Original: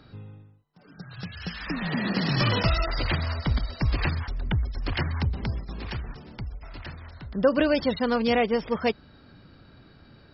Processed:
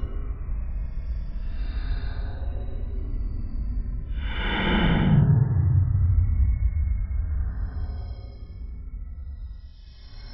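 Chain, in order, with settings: transient shaper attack +6 dB, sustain -10 dB; Paulstretch 24×, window 0.05 s, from 4.32

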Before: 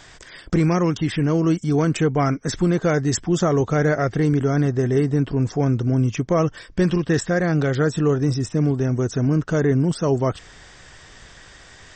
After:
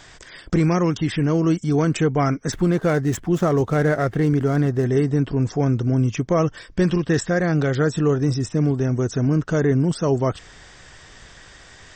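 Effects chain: 2.52–4.85 median filter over 9 samples

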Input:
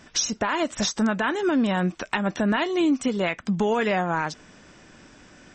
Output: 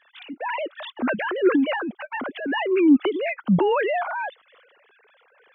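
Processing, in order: sine-wave speech; reverb removal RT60 0.55 s; transient shaper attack -5 dB, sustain +7 dB; gain +2.5 dB

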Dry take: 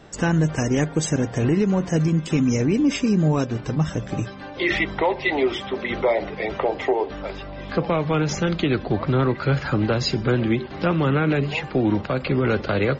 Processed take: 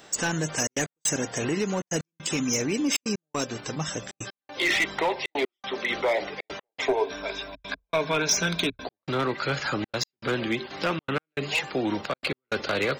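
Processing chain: RIAA curve recording; hard clip -17.5 dBFS, distortion -14 dB; step gate "xxxxxxx.x..x" 157 bpm -60 dB; 6.82–8.86 ripple EQ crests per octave 1.6, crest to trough 11 dB; gain -1.5 dB

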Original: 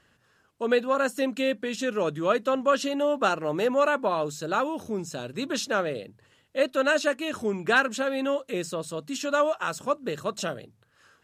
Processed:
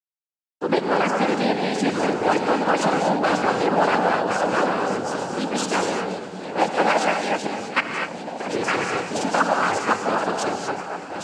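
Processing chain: regenerating reverse delay 0.515 s, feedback 46%, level -5.5 dB; steep high-pass 170 Hz; notch 2900 Hz, Q 9.7; 7.46–8.4 level quantiser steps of 19 dB; 9.39–9.92 comb 4.3 ms, depth 81%; delay with a stepping band-pass 0.7 s, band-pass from 260 Hz, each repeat 1.4 oct, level -10.5 dB; sample gate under -43.5 dBFS; noise vocoder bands 8; non-linear reverb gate 0.27 s rising, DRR 3.5 dB; maximiser +9 dB; gain -6 dB

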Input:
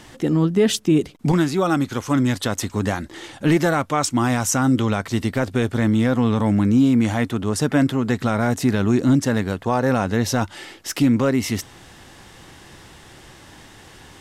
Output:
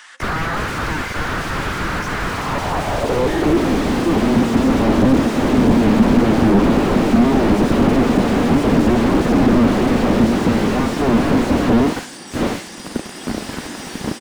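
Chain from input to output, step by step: reverse delay 0.545 s, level -0.5 dB; spectral noise reduction 13 dB; 6.39–7.12 bell 350 Hz -13.5 dB 1.5 oct; in parallel at -2 dB: compressor, threshold -28 dBFS, peak gain reduction 16 dB; on the sum: sample leveller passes 3; AGC gain up to 10.5 dB; sine folder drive 20 dB, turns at -0.5 dBFS; added harmonics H 5 -11 dB, 7 -7 dB, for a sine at 3 dBFS; high-pass sweep 1400 Hz -> 230 Hz, 2.24–3.72; on a send at -18 dB: reverb, pre-delay 3 ms; on the sum: downsampling 22050 Hz; slew limiter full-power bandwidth 190 Hz; gain -4.5 dB

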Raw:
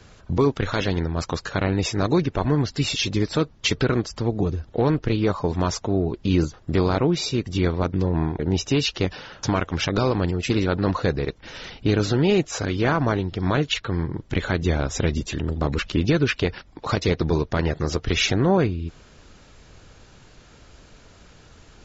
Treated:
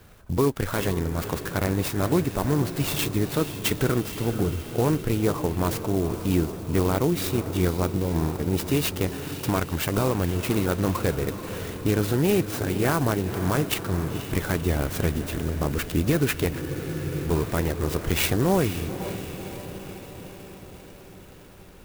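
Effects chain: diffused feedback echo 0.5 s, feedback 64%, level -10.5 dB; spectral freeze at 16.63, 0.63 s; clock jitter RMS 0.05 ms; gain -2.5 dB

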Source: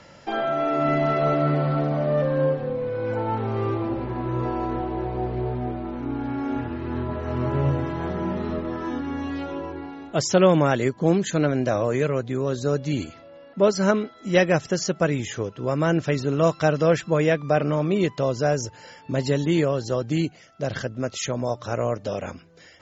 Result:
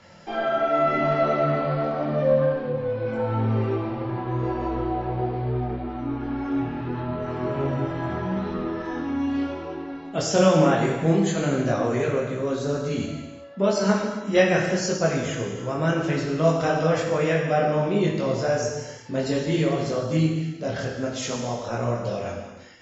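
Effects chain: chorus voices 2, 0.87 Hz, delay 22 ms, depth 3.5 ms; non-linear reverb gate 0.44 s falling, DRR 0 dB

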